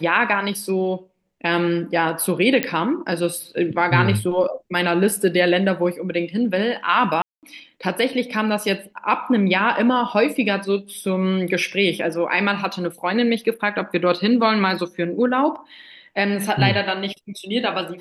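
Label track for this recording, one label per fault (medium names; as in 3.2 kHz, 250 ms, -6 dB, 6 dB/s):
2.630000	2.630000	pop -5 dBFS
7.220000	7.430000	dropout 208 ms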